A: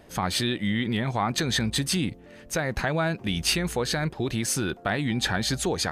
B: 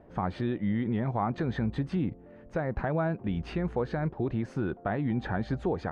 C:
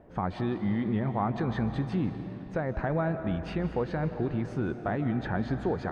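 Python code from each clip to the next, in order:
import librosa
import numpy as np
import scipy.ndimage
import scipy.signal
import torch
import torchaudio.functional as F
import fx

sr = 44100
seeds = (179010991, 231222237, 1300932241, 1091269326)

y1 = scipy.signal.sosfilt(scipy.signal.butter(2, 1100.0, 'lowpass', fs=sr, output='sos'), x)
y1 = y1 * librosa.db_to_amplitude(-2.0)
y2 = fx.rev_freeverb(y1, sr, rt60_s=3.2, hf_ratio=0.85, predelay_ms=110, drr_db=8.5)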